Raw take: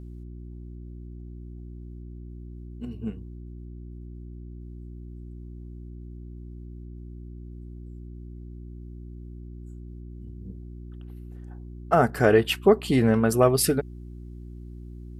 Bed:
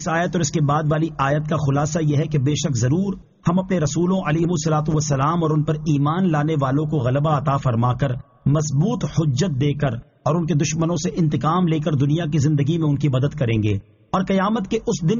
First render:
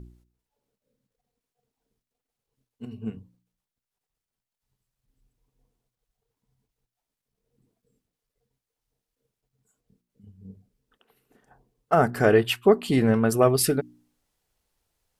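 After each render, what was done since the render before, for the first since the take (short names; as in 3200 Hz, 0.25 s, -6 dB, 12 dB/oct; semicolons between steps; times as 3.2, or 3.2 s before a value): de-hum 60 Hz, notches 6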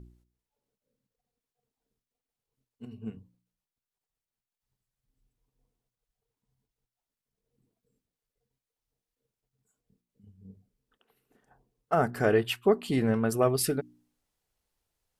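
gain -5.5 dB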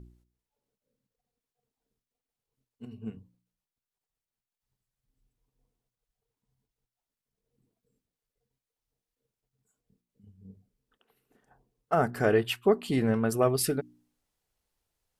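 nothing audible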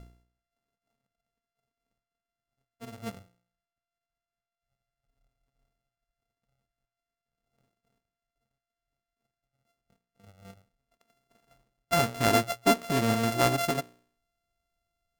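sample sorter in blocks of 64 samples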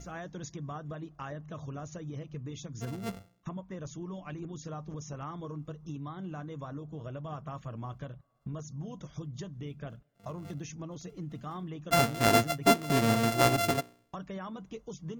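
add bed -21.5 dB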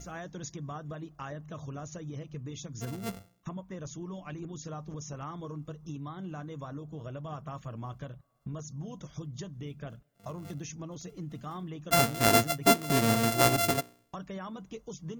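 high shelf 6600 Hz +7.5 dB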